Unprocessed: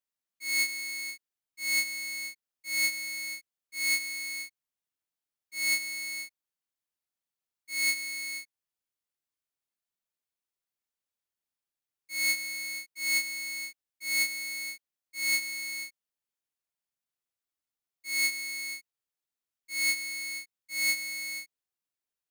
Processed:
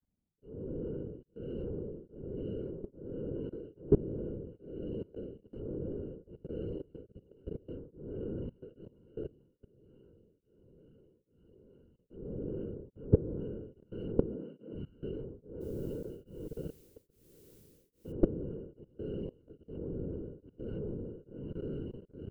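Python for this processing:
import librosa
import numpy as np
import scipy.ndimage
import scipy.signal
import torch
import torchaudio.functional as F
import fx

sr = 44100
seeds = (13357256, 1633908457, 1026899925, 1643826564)

p1 = fx.octave_mirror(x, sr, pivot_hz=930.0)
p2 = p1 + fx.echo_diffused(p1, sr, ms=512, feedback_pct=74, wet_db=-14.0, dry=0)
p3 = fx.whisperise(p2, sr, seeds[0])
p4 = fx.highpass(p3, sr, hz=170.0, slope=24, at=(14.26, 14.72), fade=0.02)
p5 = 10.0 ** (-23.5 / 20.0) * np.tanh(p4 / 10.0 ** (-23.5 / 20.0))
p6 = p4 + (p5 * librosa.db_to_amplitude(-10.0))
p7 = fx.env_lowpass_down(p6, sr, base_hz=1000.0, full_db=-26.0)
p8 = fx.hum_notches(p7, sr, base_hz=60, count=6)
p9 = fx.level_steps(p8, sr, step_db=22)
p10 = fx.lowpass(p9, sr, hz=1800.0, slope=12, at=(12.75, 13.4))
p11 = fx.dmg_noise_colour(p10, sr, seeds[1], colour='blue', level_db=-71.0, at=(15.6, 18.11), fade=0.02)
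p12 = p11 * np.abs(np.cos(np.pi * 1.2 * np.arange(len(p11)) / sr))
y = p12 * librosa.db_to_amplitude(6.5)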